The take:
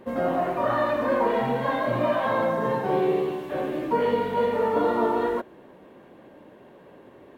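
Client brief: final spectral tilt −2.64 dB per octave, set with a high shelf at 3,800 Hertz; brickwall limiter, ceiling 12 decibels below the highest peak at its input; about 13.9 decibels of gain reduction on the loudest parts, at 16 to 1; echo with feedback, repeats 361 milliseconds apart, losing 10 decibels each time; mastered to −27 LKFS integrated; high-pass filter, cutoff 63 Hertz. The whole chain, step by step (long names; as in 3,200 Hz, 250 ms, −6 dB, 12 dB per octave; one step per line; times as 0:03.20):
high-pass filter 63 Hz
high-shelf EQ 3,800 Hz −4 dB
downward compressor 16 to 1, threshold −33 dBFS
brickwall limiter −36.5 dBFS
repeating echo 361 ms, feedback 32%, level −10 dB
level +17.5 dB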